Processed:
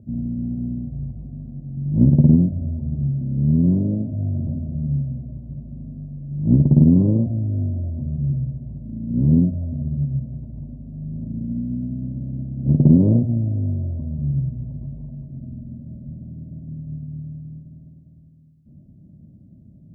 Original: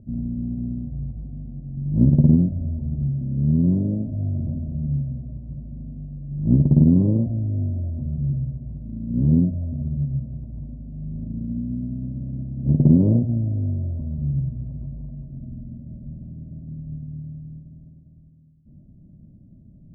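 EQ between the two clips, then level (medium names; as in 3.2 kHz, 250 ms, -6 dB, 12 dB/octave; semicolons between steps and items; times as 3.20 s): high-pass 64 Hz; +2.0 dB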